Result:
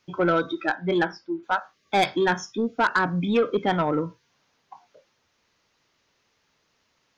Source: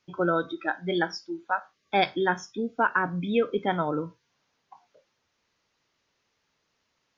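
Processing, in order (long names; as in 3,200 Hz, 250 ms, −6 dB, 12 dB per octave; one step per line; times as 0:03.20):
0:00.74–0:01.42: low-pass filter 3,100 Hz → 2,100 Hz 12 dB per octave
soft clipping −19.5 dBFS, distortion −14 dB
level +5.5 dB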